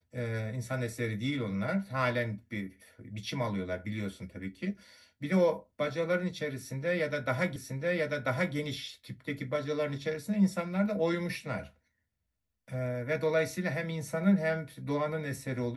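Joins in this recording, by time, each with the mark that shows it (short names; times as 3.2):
7.56 repeat of the last 0.99 s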